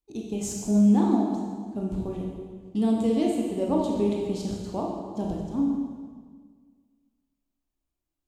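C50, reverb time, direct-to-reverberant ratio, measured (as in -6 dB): 1.0 dB, 1.7 s, -1.5 dB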